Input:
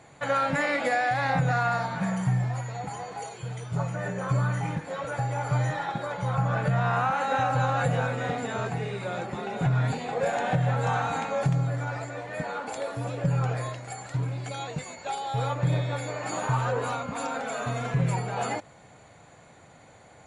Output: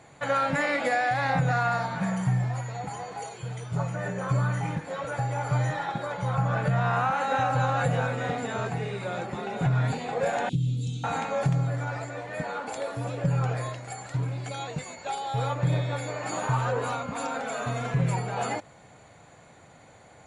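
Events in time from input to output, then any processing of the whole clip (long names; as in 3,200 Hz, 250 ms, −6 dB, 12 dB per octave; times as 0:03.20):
0:10.49–0:11.04: elliptic band-stop filter 330–3,300 Hz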